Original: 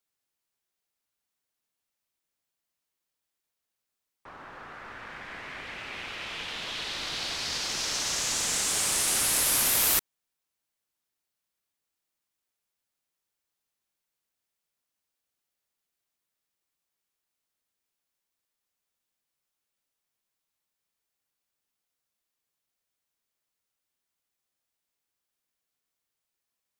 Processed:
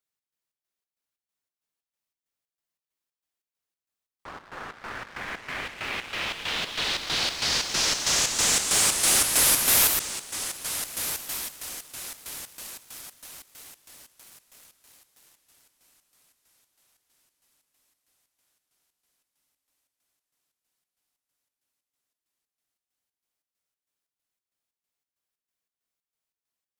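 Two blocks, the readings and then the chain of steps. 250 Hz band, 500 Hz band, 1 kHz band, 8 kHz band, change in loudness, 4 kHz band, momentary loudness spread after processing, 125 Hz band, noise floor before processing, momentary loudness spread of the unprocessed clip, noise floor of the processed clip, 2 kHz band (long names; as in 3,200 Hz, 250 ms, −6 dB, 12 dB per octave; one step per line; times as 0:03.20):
+5.0 dB, +5.0 dB, +5.0 dB, +4.5 dB, +2.5 dB, +5.0 dB, 21 LU, +5.0 dB, −85 dBFS, 20 LU, below −85 dBFS, +5.0 dB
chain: feedback delay with all-pass diffusion 1,380 ms, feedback 49%, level −13 dB
square-wave tremolo 3.1 Hz, depth 60%, duty 60%
leveller curve on the samples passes 2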